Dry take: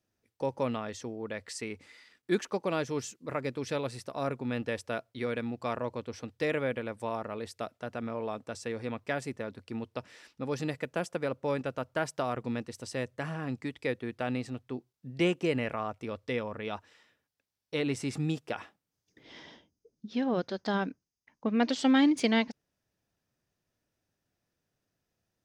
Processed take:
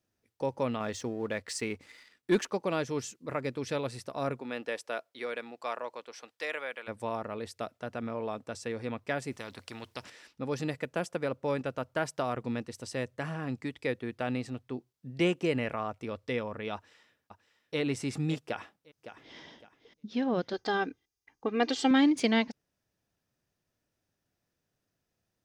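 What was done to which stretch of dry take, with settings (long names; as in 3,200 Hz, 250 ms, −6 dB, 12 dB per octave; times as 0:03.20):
0:00.80–0:02.47: leveller curve on the samples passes 1
0:04.39–0:06.87: high-pass filter 330 Hz → 900 Hz
0:09.32–0:10.10: every bin compressed towards the loudest bin 2 to 1
0:16.74–0:17.79: delay throw 560 ms, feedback 15%, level −9 dB
0:18.42–0:19.37: delay throw 560 ms, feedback 30%, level −11.5 dB
0:20.53–0:21.91: comb filter 2.5 ms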